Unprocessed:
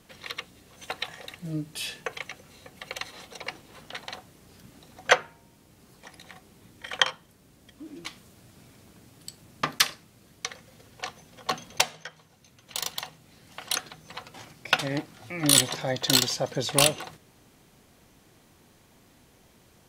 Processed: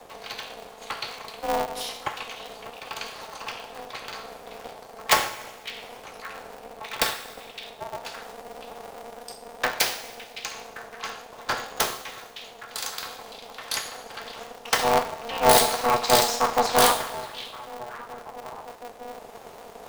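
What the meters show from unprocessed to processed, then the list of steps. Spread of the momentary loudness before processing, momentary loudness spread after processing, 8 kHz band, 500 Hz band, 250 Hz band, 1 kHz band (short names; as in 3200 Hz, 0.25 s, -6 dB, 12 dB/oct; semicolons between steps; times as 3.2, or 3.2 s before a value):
23 LU, 21 LU, -0.5 dB, +6.5 dB, -2.0 dB, +9.5 dB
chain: wrapped overs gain 8.5 dB; low shelf 430 Hz +11 dB; on a send: delay with a stepping band-pass 0.562 s, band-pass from 2500 Hz, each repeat -1.4 oct, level -10 dB; on the sum: two-slope reverb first 0.56 s, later 2 s, DRR 0.5 dB; reverse; upward compressor, threshold -32 dBFS; reverse; frequency shift +470 Hz; polarity switched at an audio rate 120 Hz; gain -3 dB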